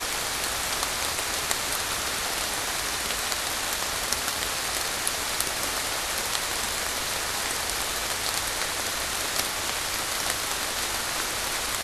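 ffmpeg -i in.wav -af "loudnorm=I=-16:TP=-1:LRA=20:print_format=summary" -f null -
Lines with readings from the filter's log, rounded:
Input Integrated:    -26.2 LUFS
Input True Peak:      -2.4 dBTP
Input LRA:             0.3 LU
Input Threshold:     -36.2 LUFS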